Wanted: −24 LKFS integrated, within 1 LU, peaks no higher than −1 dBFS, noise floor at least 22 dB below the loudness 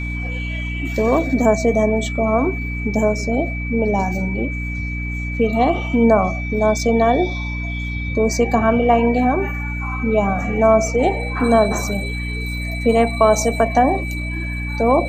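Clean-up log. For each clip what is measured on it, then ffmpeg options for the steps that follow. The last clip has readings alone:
mains hum 60 Hz; hum harmonics up to 300 Hz; level of the hum −23 dBFS; interfering tone 2,300 Hz; level of the tone −28 dBFS; integrated loudness −18.5 LKFS; sample peak −1.5 dBFS; target loudness −24.0 LKFS
→ -af "bandreject=frequency=60:width_type=h:width=6,bandreject=frequency=120:width_type=h:width=6,bandreject=frequency=180:width_type=h:width=6,bandreject=frequency=240:width_type=h:width=6,bandreject=frequency=300:width_type=h:width=6"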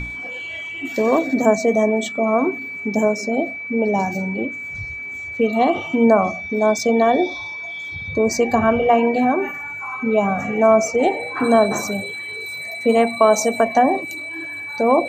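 mains hum none found; interfering tone 2,300 Hz; level of the tone −28 dBFS
→ -af "bandreject=frequency=2300:width=30"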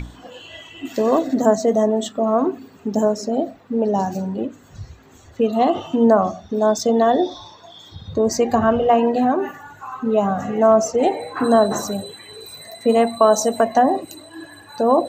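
interfering tone none found; integrated loudness −19.0 LKFS; sample peak −2.0 dBFS; target loudness −24.0 LKFS
→ -af "volume=-5dB"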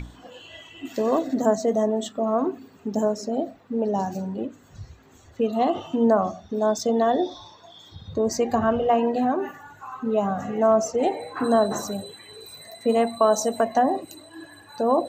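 integrated loudness −24.0 LKFS; sample peak −7.0 dBFS; background noise floor −52 dBFS

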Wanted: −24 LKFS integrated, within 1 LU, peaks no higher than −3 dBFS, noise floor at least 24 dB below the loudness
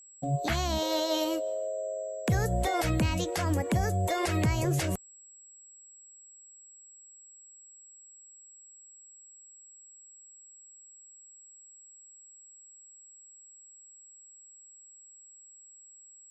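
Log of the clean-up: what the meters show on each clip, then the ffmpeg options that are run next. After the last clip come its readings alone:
interfering tone 7,700 Hz; level of the tone −51 dBFS; integrated loudness −29.5 LKFS; sample peak −18.0 dBFS; target loudness −24.0 LKFS
→ -af "bandreject=frequency=7700:width=30"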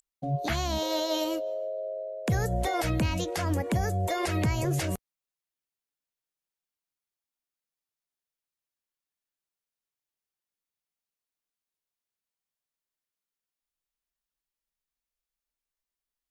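interfering tone none found; integrated loudness −29.5 LKFS; sample peak −18.0 dBFS; target loudness −24.0 LKFS
→ -af "volume=5.5dB"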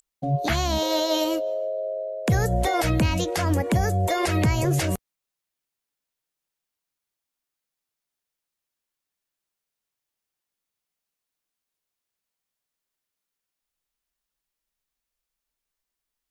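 integrated loudness −24.0 LKFS; sample peak −12.5 dBFS; background noise floor −86 dBFS

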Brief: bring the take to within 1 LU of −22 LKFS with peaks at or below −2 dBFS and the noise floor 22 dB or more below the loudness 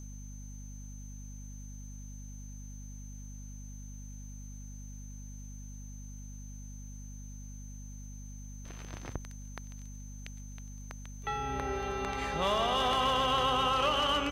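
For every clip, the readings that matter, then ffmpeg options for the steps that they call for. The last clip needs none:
mains hum 50 Hz; hum harmonics up to 250 Hz; level of the hum −42 dBFS; interfering tone 6,200 Hz; level of the tone −53 dBFS; integrated loudness −30.5 LKFS; sample peak −18.0 dBFS; target loudness −22.0 LKFS
→ -af "bandreject=frequency=50:width_type=h:width=6,bandreject=frequency=100:width_type=h:width=6,bandreject=frequency=150:width_type=h:width=6,bandreject=frequency=200:width_type=h:width=6,bandreject=frequency=250:width_type=h:width=6"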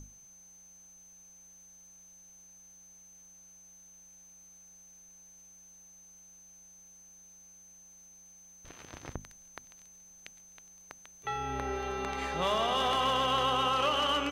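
mains hum none found; interfering tone 6,200 Hz; level of the tone −53 dBFS
→ -af "bandreject=frequency=6200:width=30"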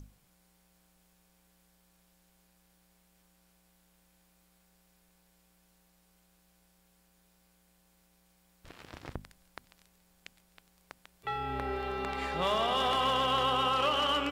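interfering tone none found; integrated loudness −30.0 LKFS; sample peak −17.5 dBFS; target loudness −22.0 LKFS
→ -af "volume=8dB"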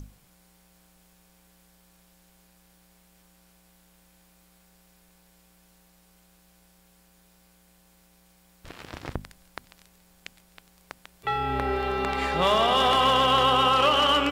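integrated loudness −22.0 LKFS; sample peak −9.5 dBFS; background noise floor −60 dBFS

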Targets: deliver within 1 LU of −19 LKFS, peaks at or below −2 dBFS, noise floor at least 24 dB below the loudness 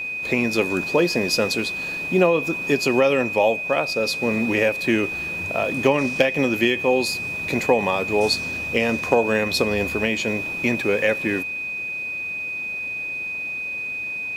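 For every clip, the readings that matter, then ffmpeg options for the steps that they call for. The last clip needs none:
interfering tone 2,500 Hz; level of the tone −26 dBFS; integrated loudness −21.5 LKFS; sample peak −3.5 dBFS; target loudness −19.0 LKFS
→ -af "bandreject=frequency=2500:width=30"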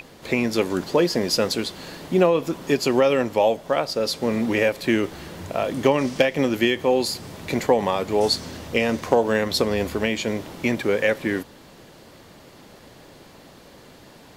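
interfering tone none found; integrated loudness −22.5 LKFS; sample peak −4.0 dBFS; target loudness −19.0 LKFS
→ -af "volume=3.5dB,alimiter=limit=-2dB:level=0:latency=1"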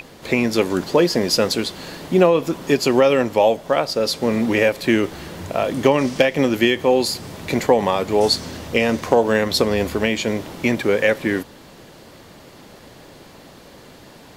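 integrated loudness −19.0 LKFS; sample peak −2.0 dBFS; background noise floor −44 dBFS

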